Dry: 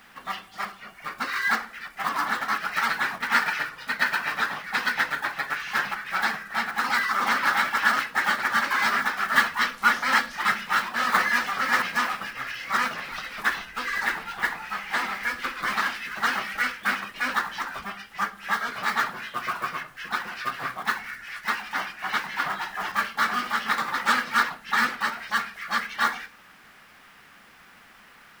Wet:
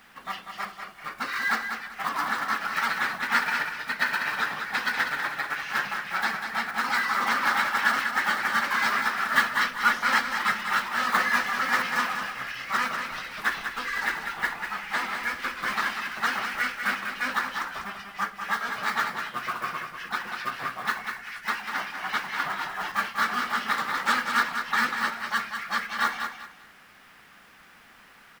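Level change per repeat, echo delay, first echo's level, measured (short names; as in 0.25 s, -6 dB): -11.5 dB, 0.194 s, -7.0 dB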